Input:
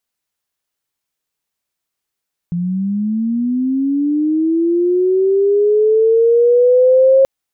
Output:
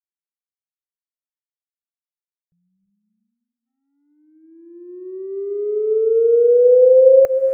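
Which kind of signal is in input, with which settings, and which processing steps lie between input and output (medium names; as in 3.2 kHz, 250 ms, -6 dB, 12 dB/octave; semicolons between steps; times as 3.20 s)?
sweep linear 170 Hz -> 540 Hz -16 dBFS -> -6 dBFS 4.73 s
gate -12 dBFS, range -42 dB; static phaser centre 950 Hz, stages 6; gated-style reverb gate 390 ms rising, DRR 8.5 dB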